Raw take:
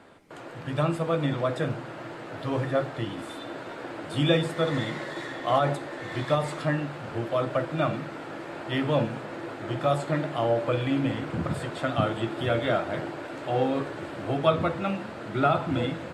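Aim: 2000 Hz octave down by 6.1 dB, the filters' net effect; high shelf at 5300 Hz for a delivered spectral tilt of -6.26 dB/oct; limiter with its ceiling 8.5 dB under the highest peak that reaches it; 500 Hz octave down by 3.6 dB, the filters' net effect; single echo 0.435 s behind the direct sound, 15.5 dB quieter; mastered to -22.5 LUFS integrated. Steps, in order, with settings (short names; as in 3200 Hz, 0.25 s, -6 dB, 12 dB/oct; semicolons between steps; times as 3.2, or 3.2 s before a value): bell 500 Hz -4 dB; bell 2000 Hz -7 dB; high shelf 5300 Hz -7 dB; limiter -19.5 dBFS; echo 0.435 s -15.5 dB; gain +9.5 dB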